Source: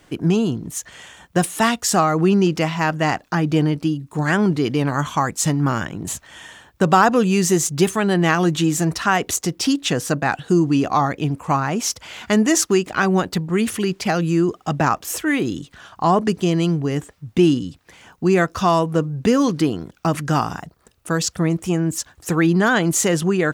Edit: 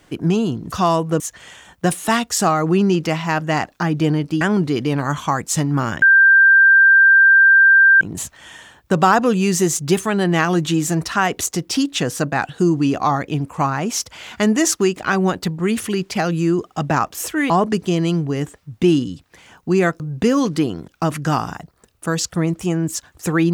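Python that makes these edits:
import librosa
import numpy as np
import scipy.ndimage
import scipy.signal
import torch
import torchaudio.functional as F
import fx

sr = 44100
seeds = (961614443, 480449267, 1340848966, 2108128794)

y = fx.edit(x, sr, fx.cut(start_s=3.93, length_s=0.37),
    fx.insert_tone(at_s=5.91, length_s=1.99, hz=1580.0, db=-7.0),
    fx.cut(start_s=15.4, length_s=0.65),
    fx.move(start_s=18.55, length_s=0.48, to_s=0.72), tone=tone)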